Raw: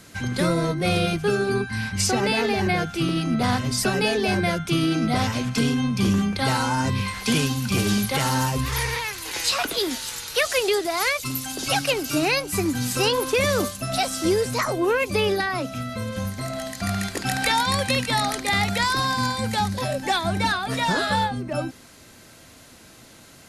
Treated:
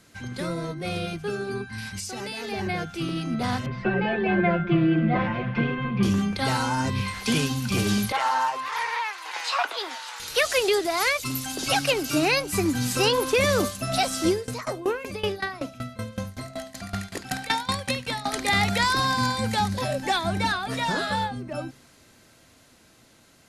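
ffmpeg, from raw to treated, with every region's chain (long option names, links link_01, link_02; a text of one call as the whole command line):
ffmpeg -i in.wav -filter_complex "[0:a]asettb=1/sr,asplit=3[link_01][link_02][link_03];[link_01]atrim=end=1.784[link_04];[link_02]atrim=start=1.78:end=2.52,asetpts=PTS-STARTPTS,afade=type=in:duration=0.004:curve=qsin,afade=type=out:start_time=0.736:duration=0.004:curve=qsin,highshelf=frequency=3800:gain=12,acompressor=threshold=-22dB:ratio=16:attack=3.2:release=140:knee=1:detection=peak[link_05];[link_03]atrim=start=2.516[link_06];[link_04][link_05]acrossfade=duration=0.004:curve1=hsin:curve2=qsin[link_07];[link_07][link_06]acrossfade=duration=0.004:curve1=qsin:curve2=hsin,asettb=1/sr,asplit=3[link_08][link_09][link_10];[link_08]atrim=end=3.664[link_11];[link_09]atrim=start=3.66:end=6.03,asetpts=PTS-STARTPTS,afade=type=in:duration=0.004:curve=qsin,afade=type=out:start_time=2.366:duration=0.004:curve=qsin,lowpass=frequency=2400:width=0.5412,lowpass=frequency=2400:width=1.3066,aecho=1:1:5.7:0.87,atrim=end_sample=104517,aecho=1:1:268:0.188,atrim=end_sample=104517[link_12];[link_10]atrim=start=6.026[link_13];[link_11][link_12]acrossfade=duration=0.004:curve1=hsin:curve2=qsin[link_14];[link_14][link_13]acrossfade=duration=0.004:curve1=qsin:curve2=hsin,asettb=1/sr,asplit=3[link_15][link_16][link_17];[link_15]atrim=end=8.124[link_18];[link_16]atrim=start=8.12:end=10.2,asetpts=PTS-STARTPTS,afade=type=in:duration=0.004:curve=qsin,afade=type=out:start_time=2.076:duration=0.004:curve=qsin,highpass=frequency=880:width_type=q:width=1.8,aemphasis=mode=reproduction:type=75fm[link_19];[link_17]atrim=start=10.196[link_20];[link_18][link_19]acrossfade=duration=0.004:curve1=hsin:curve2=qsin[link_21];[link_21][link_20]acrossfade=duration=0.004:curve1=qsin:curve2=hsin,asettb=1/sr,asplit=3[link_22][link_23][link_24];[link_22]atrim=end=14.294[link_25];[link_23]atrim=start=14.29:end=18.33,asetpts=PTS-STARTPTS,afade=type=in:duration=0.004:curve=qsin,afade=type=out:start_time=4.036:duration=0.004:curve=qsin,aecho=1:1:73:0.168,atrim=end_sample=178164,aeval=exprs='val(0)*pow(10,-19*if(lt(mod(5.3*n/s,1),2*abs(5.3)/1000),1-mod(5.3*n/s,1)/(2*abs(5.3)/1000),(mod(5.3*n/s,1)-2*abs(5.3)/1000)/(1-2*abs(5.3)/1000))/20)':channel_layout=same[link_26];[link_24]atrim=start=18.326[link_27];[link_25][link_26]acrossfade=duration=0.004:curve1=hsin:curve2=qsin[link_28];[link_28][link_27]acrossfade=duration=0.004:curve1=qsin:curve2=hsin,highshelf=frequency=11000:gain=-4.5,bandreject=frequency=45.14:width_type=h:width=4,bandreject=frequency=90.28:width_type=h:width=4,bandreject=frequency=135.42:width_type=h:width=4,bandreject=frequency=180.56:width_type=h:width=4,dynaudnorm=framelen=620:gausssize=11:maxgain=11.5dB,volume=-8dB" out.wav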